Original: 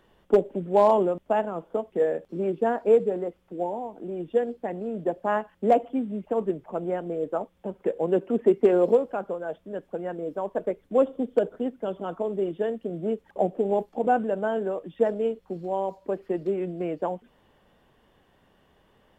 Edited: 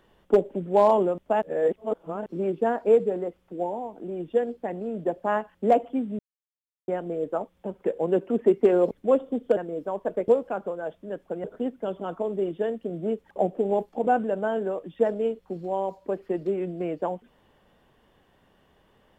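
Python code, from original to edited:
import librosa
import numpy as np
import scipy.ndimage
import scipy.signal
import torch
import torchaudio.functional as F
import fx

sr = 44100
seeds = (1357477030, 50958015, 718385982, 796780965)

y = fx.edit(x, sr, fx.reverse_span(start_s=1.42, length_s=0.84),
    fx.silence(start_s=6.19, length_s=0.69),
    fx.swap(start_s=8.91, length_s=1.16, other_s=10.78, other_length_s=0.66), tone=tone)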